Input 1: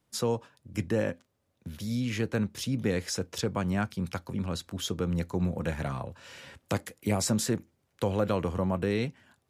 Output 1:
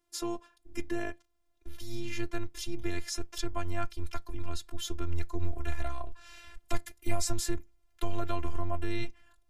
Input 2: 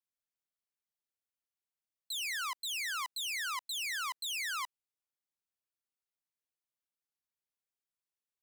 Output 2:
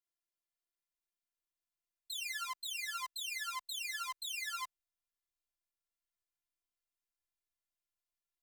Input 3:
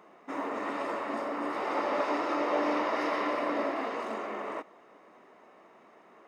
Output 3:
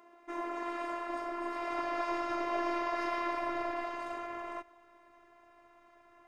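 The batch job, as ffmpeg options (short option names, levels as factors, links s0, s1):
-af "afftfilt=real='hypot(re,im)*cos(PI*b)':imag='0':win_size=512:overlap=0.75,asubboost=boost=8.5:cutoff=100"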